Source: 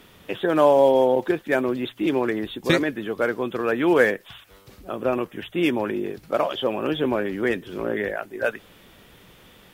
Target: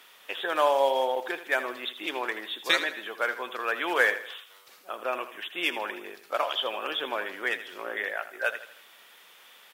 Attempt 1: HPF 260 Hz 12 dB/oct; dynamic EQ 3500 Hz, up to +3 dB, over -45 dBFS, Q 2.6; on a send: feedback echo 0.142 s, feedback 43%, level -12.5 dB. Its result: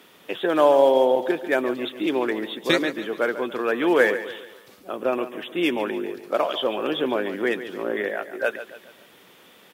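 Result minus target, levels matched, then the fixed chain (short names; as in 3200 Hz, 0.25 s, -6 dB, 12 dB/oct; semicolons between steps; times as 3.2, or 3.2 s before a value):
echo 62 ms late; 250 Hz band +10.5 dB
HPF 890 Hz 12 dB/oct; dynamic EQ 3500 Hz, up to +3 dB, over -45 dBFS, Q 2.6; on a send: feedback echo 80 ms, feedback 43%, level -12.5 dB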